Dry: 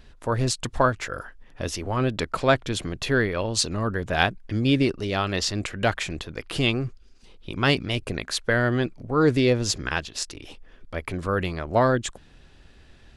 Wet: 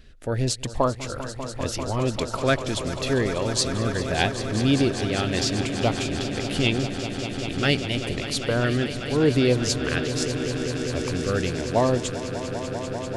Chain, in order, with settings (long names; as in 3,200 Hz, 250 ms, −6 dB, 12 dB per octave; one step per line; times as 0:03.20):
auto-filter notch saw up 0.81 Hz 860–2,000 Hz
on a send: echo that builds up and dies away 197 ms, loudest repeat 5, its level −13 dB